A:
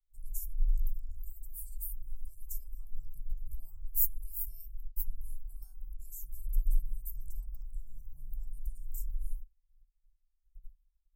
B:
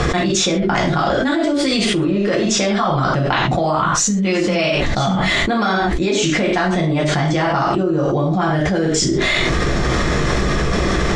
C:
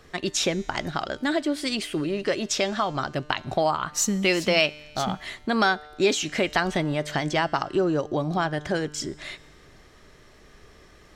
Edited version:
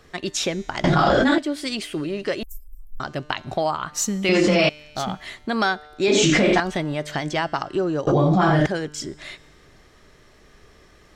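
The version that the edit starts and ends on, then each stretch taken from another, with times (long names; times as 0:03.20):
C
0:00.84–0:01.38: punch in from B
0:02.43–0:03.00: punch in from A
0:04.29–0:04.69: punch in from B
0:06.08–0:06.60: punch in from B
0:08.07–0:08.66: punch in from B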